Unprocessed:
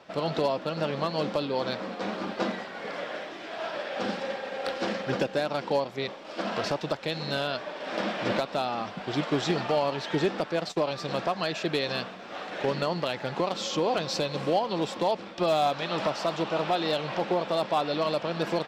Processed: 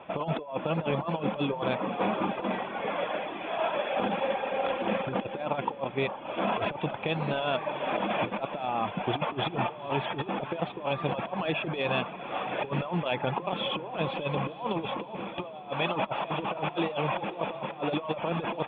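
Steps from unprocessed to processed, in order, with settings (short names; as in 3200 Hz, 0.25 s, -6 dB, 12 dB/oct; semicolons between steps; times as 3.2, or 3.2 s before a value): rippled Chebyshev low-pass 3500 Hz, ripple 9 dB; low shelf 320 Hz +7 dB; negative-ratio compressor -34 dBFS, ratio -0.5; reverb removal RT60 0.5 s; on a send: diffused feedback echo 0.478 s, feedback 50%, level -15.5 dB; on the sum: gain +5.5 dB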